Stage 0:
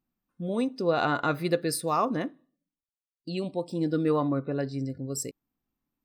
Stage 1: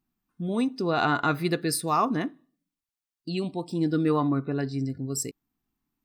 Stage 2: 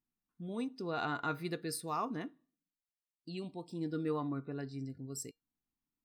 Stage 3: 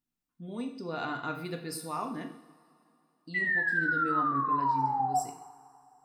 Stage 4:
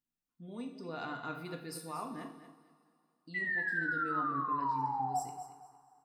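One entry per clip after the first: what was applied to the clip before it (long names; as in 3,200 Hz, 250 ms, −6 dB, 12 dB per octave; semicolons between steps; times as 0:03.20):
parametric band 540 Hz −14 dB 0.25 octaves; level +3 dB
tuned comb filter 470 Hz, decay 0.17 s, harmonics all, mix 50%; level −7 dB
sound drawn into the spectrogram fall, 0:03.34–0:05.20, 720–2,000 Hz −30 dBFS; coupled-rooms reverb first 0.62 s, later 2.9 s, from −19 dB, DRR 3.5 dB
repeating echo 231 ms, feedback 24%, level −12 dB; level −6 dB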